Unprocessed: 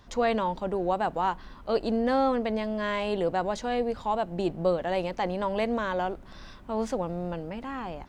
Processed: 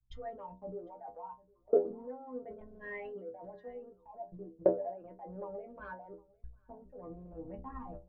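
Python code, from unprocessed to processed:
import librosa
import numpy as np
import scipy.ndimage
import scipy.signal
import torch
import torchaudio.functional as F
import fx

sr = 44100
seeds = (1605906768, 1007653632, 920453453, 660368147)

y = fx.envelope_sharpen(x, sr, power=3.0)
y = scipy.signal.sosfilt(scipy.signal.butter(4, 3200.0, 'lowpass', fs=sr, output='sos'), y)
y = fx.transient(y, sr, attack_db=4, sustain_db=-11)
y = y * (1.0 - 0.49 / 2.0 + 0.49 / 2.0 * np.cos(2.0 * np.pi * 2.3 * (np.arange(len(y)) / sr)))
y = fx.level_steps(y, sr, step_db=22)
y = fx.stiff_resonator(y, sr, f0_hz=60.0, decay_s=0.44, stiffness=0.008)
y = y + 10.0 ** (-19.0 / 20.0) * np.pad(y, (int(755 * sr / 1000.0), 0))[:len(y)]
y = fx.band_widen(y, sr, depth_pct=70)
y = y * 10.0 ** (9.0 / 20.0)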